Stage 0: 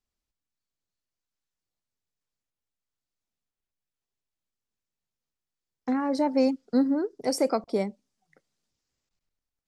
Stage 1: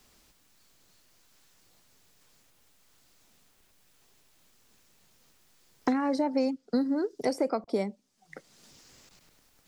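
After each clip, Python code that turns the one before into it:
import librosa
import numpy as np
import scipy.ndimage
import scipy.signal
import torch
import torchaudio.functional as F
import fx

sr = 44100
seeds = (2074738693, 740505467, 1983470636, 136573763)

y = fx.band_squash(x, sr, depth_pct=100)
y = y * librosa.db_to_amplitude(-3.0)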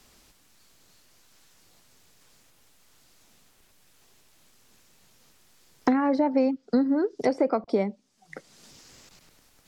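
y = fx.env_lowpass_down(x, sr, base_hz=2800.0, full_db=-24.0)
y = y * librosa.db_to_amplitude(4.5)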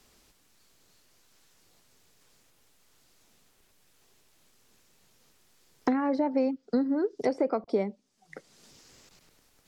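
y = fx.peak_eq(x, sr, hz=420.0, db=3.0, octaves=0.56)
y = y * librosa.db_to_amplitude(-4.5)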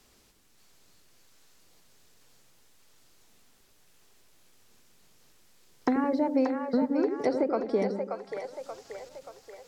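y = fx.echo_split(x, sr, split_hz=490.0, low_ms=82, high_ms=581, feedback_pct=52, wet_db=-5)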